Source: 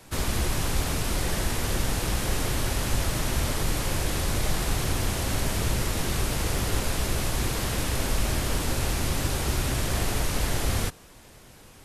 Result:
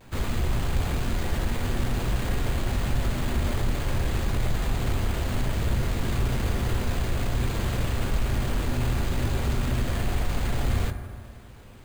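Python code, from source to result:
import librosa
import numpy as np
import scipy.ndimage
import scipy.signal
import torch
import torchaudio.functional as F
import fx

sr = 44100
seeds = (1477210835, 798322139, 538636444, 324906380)

p1 = fx.low_shelf(x, sr, hz=190.0, db=4.5)
p2 = np.clip(p1, -10.0 ** (-26.0 / 20.0), 10.0 ** (-26.0 / 20.0))
p3 = p1 + (p2 * librosa.db_to_amplitude(-2.0))
p4 = fx.vibrato(p3, sr, rate_hz=0.37, depth_cents=22.0)
p5 = scipy.signal.sosfilt(scipy.signal.butter(2, 5100.0, 'lowpass', fs=sr, output='sos'), p4)
p6 = fx.rev_fdn(p5, sr, rt60_s=2.0, lf_ratio=0.95, hf_ratio=0.3, size_ms=25.0, drr_db=7.0)
p7 = np.repeat(scipy.signal.resample_poly(p6, 1, 4), 4)[:len(p6)]
y = p7 * librosa.db_to_amplitude(-6.0)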